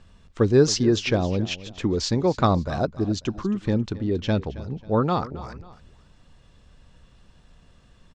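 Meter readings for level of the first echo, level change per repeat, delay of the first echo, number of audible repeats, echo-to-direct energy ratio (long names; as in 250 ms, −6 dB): −17.0 dB, −8.0 dB, 271 ms, 2, −16.5 dB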